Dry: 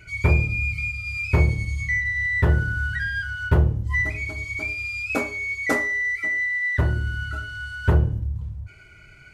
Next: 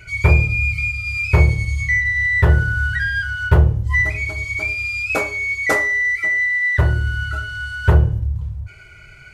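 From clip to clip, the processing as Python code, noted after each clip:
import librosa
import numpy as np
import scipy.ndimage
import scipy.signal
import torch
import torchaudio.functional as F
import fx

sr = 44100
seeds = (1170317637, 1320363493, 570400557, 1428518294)

y = fx.peak_eq(x, sr, hz=250.0, db=-14.5, octaves=0.49)
y = y * librosa.db_to_amplitude(6.0)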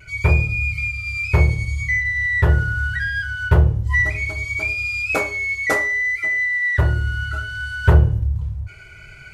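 y = fx.rider(x, sr, range_db=4, speed_s=2.0)
y = fx.vibrato(y, sr, rate_hz=0.69, depth_cents=18.0)
y = y * librosa.db_to_amplitude(-2.0)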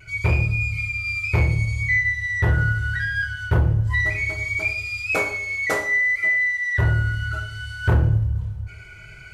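y = 10.0 ** (-9.5 / 20.0) * np.tanh(x / 10.0 ** (-9.5 / 20.0))
y = fx.rev_double_slope(y, sr, seeds[0], early_s=0.49, late_s=2.3, knee_db=-20, drr_db=5.5)
y = y * librosa.db_to_amplitude(-2.0)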